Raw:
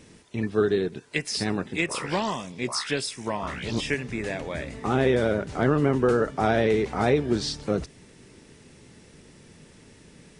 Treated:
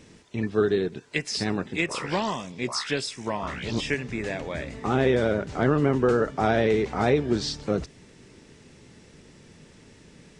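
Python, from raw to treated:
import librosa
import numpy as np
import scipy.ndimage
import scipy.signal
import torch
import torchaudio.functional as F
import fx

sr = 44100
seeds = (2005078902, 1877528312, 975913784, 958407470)

y = fx.peak_eq(x, sr, hz=9500.0, db=-11.0, octaves=0.21)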